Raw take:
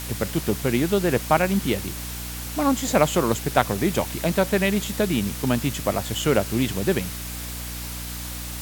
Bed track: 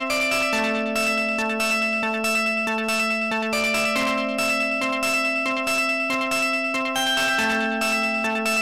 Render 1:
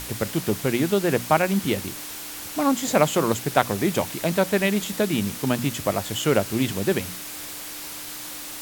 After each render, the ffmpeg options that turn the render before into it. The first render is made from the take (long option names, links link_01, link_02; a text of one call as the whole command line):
ffmpeg -i in.wav -af "bandreject=frequency=60:width_type=h:width=6,bandreject=frequency=120:width_type=h:width=6,bandreject=frequency=180:width_type=h:width=6,bandreject=frequency=240:width_type=h:width=6" out.wav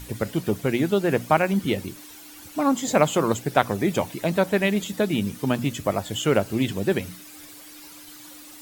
ffmpeg -i in.wav -af "afftdn=noise_reduction=12:noise_floor=-36" out.wav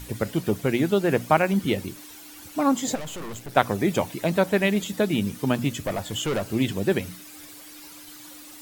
ffmpeg -i in.wav -filter_complex "[0:a]asplit=3[link_01][link_02][link_03];[link_01]afade=type=out:start_time=2.94:duration=0.02[link_04];[link_02]aeval=exprs='(tanh(50.1*val(0)+0.65)-tanh(0.65))/50.1':channel_layout=same,afade=type=in:start_time=2.94:duration=0.02,afade=type=out:start_time=3.55:duration=0.02[link_05];[link_03]afade=type=in:start_time=3.55:duration=0.02[link_06];[link_04][link_05][link_06]amix=inputs=3:normalize=0,asettb=1/sr,asplit=3[link_07][link_08][link_09];[link_07]atrim=end=5.794[link_10];[link_08]atrim=start=5.79:end=6.47,asetpts=PTS-STARTPTS,afade=type=in:duration=0.004:curve=qsin,afade=type=out:start_time=0.676:duration=0.004:curve=qsin,asoftclip=type=hard:threshold=-22.5dB[link_11];[link_09]atrim=start=6.466[link_12];[link_10][link_11]acrossfade=duration=0.004:curve1=hsin:curve2=qsin[link_13];[link_13][link_12]acrossfade=duration=0.004:curve1=qsin:curve2=hsin" out.wav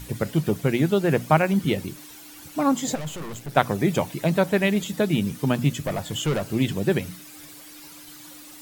ffmpeg -i in.wav -af "equalizer=frequency=150:width_type=o:width=0.28:gain=9.5" out.wav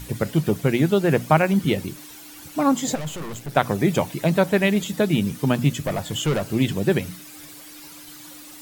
ffmpeg -i in.wav -af "volume=2dB,alimiter=limit=-3dB:level=0:latency=1" out.wav